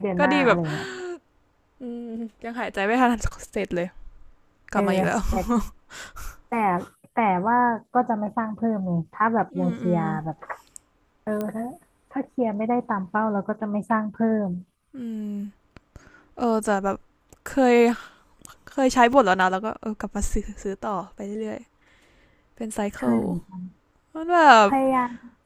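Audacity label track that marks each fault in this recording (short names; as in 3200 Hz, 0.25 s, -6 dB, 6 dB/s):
11.410000	11.410000	pop -16 dBFS
19.130000	19.130000	gap 2.9 ms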